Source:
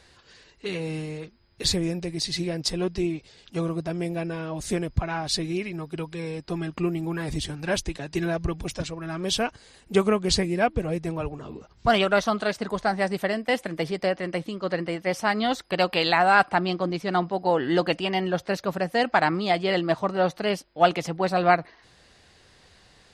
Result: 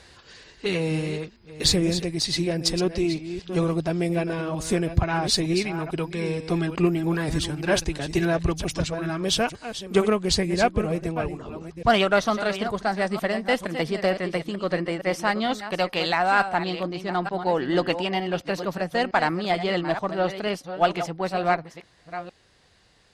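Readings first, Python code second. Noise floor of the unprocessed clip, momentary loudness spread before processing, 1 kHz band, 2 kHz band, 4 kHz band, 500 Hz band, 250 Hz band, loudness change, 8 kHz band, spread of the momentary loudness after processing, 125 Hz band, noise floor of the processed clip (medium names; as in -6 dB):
-57 dBFS, 10 LU, -0.5 dB, 0.0 dB, +2.0 dB, +1.0 dB, +2.0 dB, +1.0 dB, +3.0 dB, 7 LU, +2.5 dB, -57 dBFS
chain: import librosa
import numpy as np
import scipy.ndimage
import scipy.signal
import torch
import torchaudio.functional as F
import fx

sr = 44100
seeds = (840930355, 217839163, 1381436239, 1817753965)

y = fx.reverse_delay(x, sr, ms=455, wet_db=-10)
y = fx.rider(y, sr, range_db=10, speed_s=2.0)
y = fx.cheby_harmonics(y, sr, harmonics=(8,), levels_db=(-34,), full_scale_db=-5.5)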